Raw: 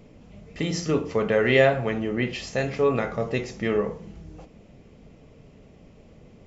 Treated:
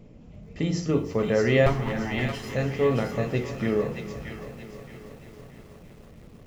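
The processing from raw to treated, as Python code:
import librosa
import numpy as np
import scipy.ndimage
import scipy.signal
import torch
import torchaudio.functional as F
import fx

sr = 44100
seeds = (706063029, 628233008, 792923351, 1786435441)

p1 = fx.lower_of_two(x, sr, delay_ms=1.0, at=(1.66, 2.54))
p2 = fx.low_shelf(p1, sr, hz=430.0, db=9.5)
p3 = fx.hum_notches(p2, sr, base_hz=50, count=9)
p4 = p3 + fx.echo_wet_highpass(p3, sr, ms=623, feedback_pct=34, hz=1500.0, wet_db=-4, dry=0)
p5 = fx.echo_crushed(p4, sr, ms=320, feedback_pct=80, bits=7, wet_db=-15.0)
y = F.gain(torch.from_numpy(p5), -5.5).numpy()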